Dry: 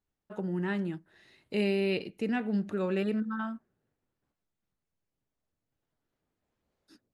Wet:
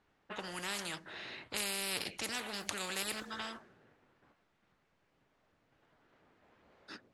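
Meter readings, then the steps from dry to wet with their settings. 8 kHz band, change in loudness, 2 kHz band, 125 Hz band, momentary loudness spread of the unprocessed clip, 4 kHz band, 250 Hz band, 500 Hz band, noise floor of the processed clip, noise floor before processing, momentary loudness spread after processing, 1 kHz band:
n/a, -7.0 dB, -1.0 dB, -17.0 dB, 10 LU, +6.0 dB, -17.5 dB, -14.0 dB, -76 dBFS, under -85 dBFS, 11 LU, -2.5 dB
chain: low-pass opened by the level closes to 1900 Hz, open at -26 dBFS; tilt +3 dB/oct; spectral compressor 4:1; gain +3.5 dB

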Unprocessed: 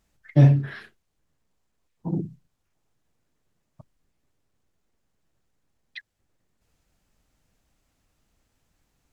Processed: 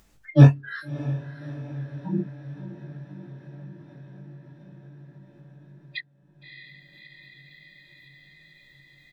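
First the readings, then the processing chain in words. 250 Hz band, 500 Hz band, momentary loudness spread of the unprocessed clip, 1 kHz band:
+2.5 dB, +3.0 dB, 21 LU, +4.0 dB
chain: spectral noise reduction 23 dB; dynamic EQ 1200 Hz, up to +6 dB, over -49 dBFS, Q 1.9; doubler 20 ms -6 dB; diffused feedback echo 0.625 s, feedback 60%, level -15 dB; in parallel at 0 dB: upward compressor, threshold -34 dBFS; on the sum: gain -1.5 dB

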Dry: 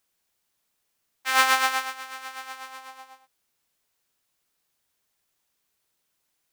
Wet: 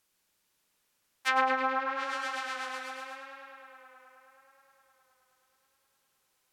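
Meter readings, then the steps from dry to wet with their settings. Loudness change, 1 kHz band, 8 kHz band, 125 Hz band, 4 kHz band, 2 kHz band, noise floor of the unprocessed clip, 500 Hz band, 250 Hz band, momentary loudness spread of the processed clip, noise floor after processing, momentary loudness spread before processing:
-8.5 dB, -3.5 dB, -15.0 dB, n/a, -10.5 dB, -6.0 dB, -76 dBFS, +3.5 dB, +5.5 dB, 20 LU, -76 dBFS, 19 LU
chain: treble ducked by the level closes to 850 Hz, closed at -22 dBFS; notch 700 Hz, Q 12; tape echo 0.105 s, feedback 89%, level -6 dB, low-pass 5600 Hz; gain +1 dB

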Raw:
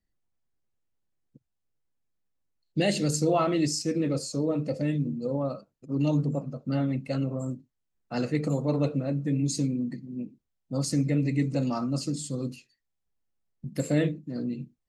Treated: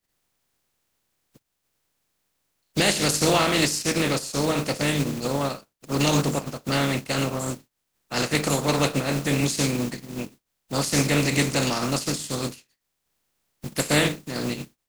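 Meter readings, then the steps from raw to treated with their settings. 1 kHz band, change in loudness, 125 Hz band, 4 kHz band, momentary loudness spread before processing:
+8.5 dB, +4.5 dB, +1.5 dB, +13.0 dB, 10 LU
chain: spectral contrast lowered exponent 0.44; in parallel at -4 dB: crossover distortion -41.5 dBFS

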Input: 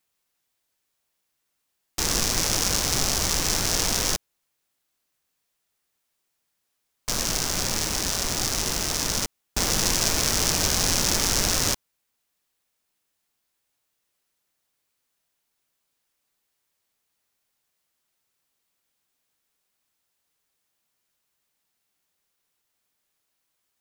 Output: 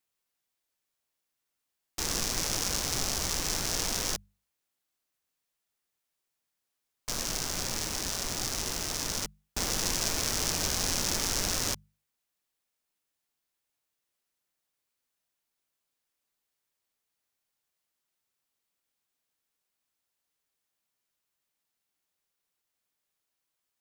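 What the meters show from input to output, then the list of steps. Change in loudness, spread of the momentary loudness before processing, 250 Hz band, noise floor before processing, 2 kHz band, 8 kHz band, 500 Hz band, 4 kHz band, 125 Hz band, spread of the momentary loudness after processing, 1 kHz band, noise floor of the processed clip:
-7.0 dB, 6 LU, -7.5 dB, -78 dBFS, -7.0 dB, -7.0 dB, -7.0 dB, -7.0 dB, -8.0 dB, 6 LU, -7.0 dB, -84 dBFS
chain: notches 50/100/150/200 Hz; gain -7 dB

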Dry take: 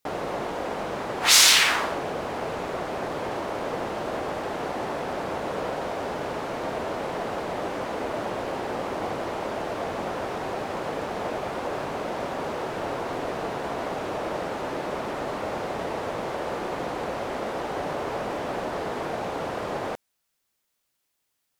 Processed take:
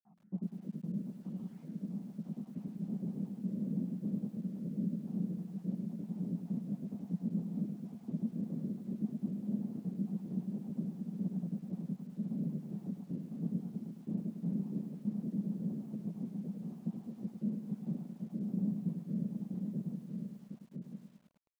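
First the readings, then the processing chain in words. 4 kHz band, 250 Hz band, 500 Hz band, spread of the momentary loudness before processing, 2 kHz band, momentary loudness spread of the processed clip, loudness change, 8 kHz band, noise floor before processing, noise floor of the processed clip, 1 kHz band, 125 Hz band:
under -40 dB, 0.0 dB, -25.5 dB, 1 LU, under -40 dB, 6 LU, -12.0 dB, under -40 dB, -77 dBFS, -57 dBFS, under -35 dB, +1.5 dB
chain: random spectral dropouts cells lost 60%; vocal rider within 3 dB 2 s; bit-crush 7-bit; pump 109 bpm, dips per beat 1, -14 dB, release 0.165 s; Butterworth band-pass 190 Hz, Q 3.3; on a send: echo 1.002 s -5 dB; on the sum: lo-fi delay 0.104 s, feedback 55%, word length 12-bit, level -7.5 dB; gain +7.5 dB

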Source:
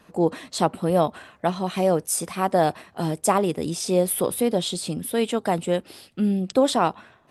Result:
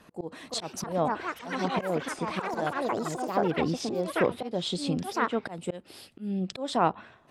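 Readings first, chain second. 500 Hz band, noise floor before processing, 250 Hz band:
-8.0 dB, -57 dBFS, -7.0 dB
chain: auto swell 0.327 s; echoes that change speed 0.392 s, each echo +6 st, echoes 3; treble ducked by the level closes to 2400 Hz, closed at -21 dBFS; gain -1 dB

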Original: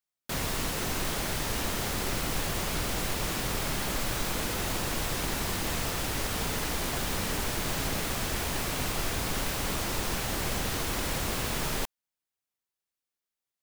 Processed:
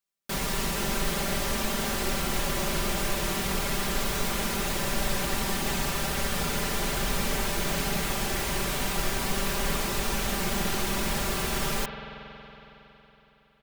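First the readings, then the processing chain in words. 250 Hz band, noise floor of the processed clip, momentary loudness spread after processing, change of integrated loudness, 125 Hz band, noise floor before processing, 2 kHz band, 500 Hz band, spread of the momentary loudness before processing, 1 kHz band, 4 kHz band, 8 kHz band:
+3.5 dB, -59 dBFS, 1 LU, +2.0 dB, +1.0 dB, under -85 dBFS, +2.5 dB, +3.5 dB, 0 LU, +3.0 dB, +2.0 dB, +1.5 dB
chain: comb 5.1 ms, depth 69%; spring tank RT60 3.8 s, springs 46 ms, chirp 60 ms, DRR 5.5 dB

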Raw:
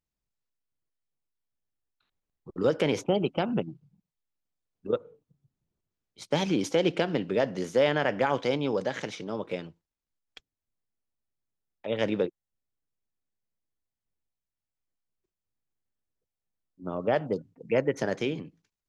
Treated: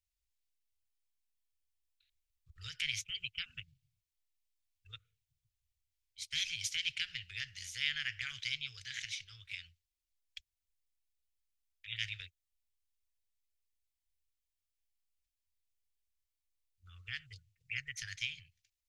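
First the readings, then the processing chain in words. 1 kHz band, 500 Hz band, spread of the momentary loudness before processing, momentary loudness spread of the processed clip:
-31.5 dB, under -40 dB, 12 LU, 19 LU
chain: inverse Chebyshev band-stop 190–970 Hz, stop band 50 dB; gain +1 dB

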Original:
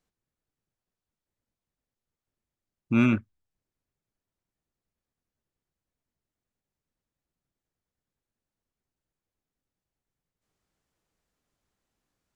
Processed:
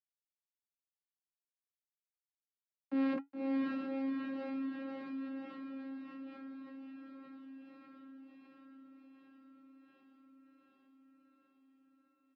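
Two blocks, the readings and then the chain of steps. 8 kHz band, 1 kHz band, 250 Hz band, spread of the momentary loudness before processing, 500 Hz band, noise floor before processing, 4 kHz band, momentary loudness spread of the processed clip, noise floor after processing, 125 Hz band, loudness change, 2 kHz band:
n/a, -4.0 dB, -5.5 dB, 6 LU, -2.0 dB, under -85 dBFS, -7.0 dB, 23 LU, under -85 dBFS, under -30 dB, -15.0 dB, -10.0 dB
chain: sample gate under -32.5 dBFS; upward compressor, threshold -34 dBFS; tone controls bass -12 dB, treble -15 dB; vocoder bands 8, saw 269 Hz; high shelf 3800 Hz -7 dB; echo 0.91 s -18.5 dB; flange 0.18 Hz, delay 0.9 ms, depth 5.4 ms, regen -61%; rotary speaker horn 1.2 Hz; diffused feedback echo 0.565 s, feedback 54%, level -3 dB; fast leveller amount 50%; gain +4 dB

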